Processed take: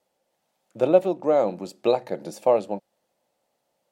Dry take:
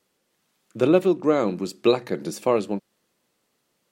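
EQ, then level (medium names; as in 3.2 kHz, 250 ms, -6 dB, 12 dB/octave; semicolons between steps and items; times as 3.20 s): high-order bell 680 Hz +11.5 dB 1 oct; -6.5 dB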